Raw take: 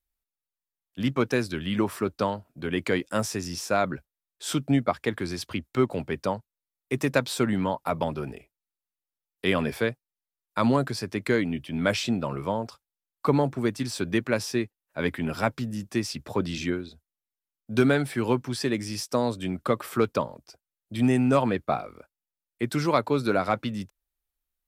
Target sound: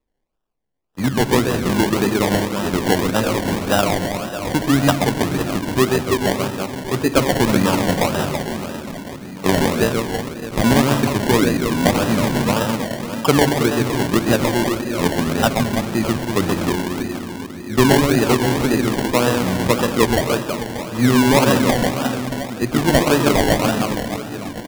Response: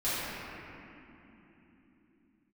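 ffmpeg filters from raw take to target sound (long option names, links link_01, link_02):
-filter_complex "[0:a]aecho=1:1:130|325|617.5|1056|1714:0.631|0.398|0.251|0.158|0.1,asplit=2[link_01][link_02];[1:a]atrim=start_sample=2205[link_03];[link_02][link_03]afir=irnorm=-1:irlink=0,volume=-17.5dB[link_04];[link_01][link_04]amix=inputs=2:normalize=0,acrusher=samples=28:mix=1:aa=0.000001:lfo=1:lforange=16.8:lforate=1.8,volume=6dB"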